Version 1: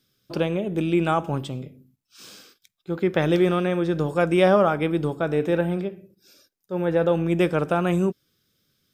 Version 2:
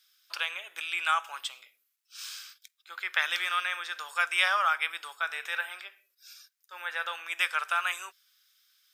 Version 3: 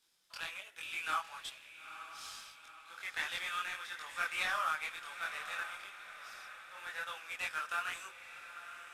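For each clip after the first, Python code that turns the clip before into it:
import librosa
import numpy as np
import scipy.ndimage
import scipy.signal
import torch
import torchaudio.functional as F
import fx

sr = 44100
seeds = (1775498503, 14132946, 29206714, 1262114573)

y1 = scipy.signal.sosfilt(scipy.signal.butter(4, 1300.0, 'highpass', fs=sr, output='sos'), x)
y1 = y1 * librosa.db_to_amplitude(4.5)
y2 = fx.cvsd(y1, sr, bps=64000)
y2 = fx.chorus_voices(y2, sr, voices=2, hz=1.2, base_ms=23, depth_ms=3.0, mix_pct=50)
y2 = fx.echo_diffused(y2, sr, ms=921, feedback_pct=51, wet_db=-11.0)
y2 = y2 * librosa.db_to_amplitude(-5.0)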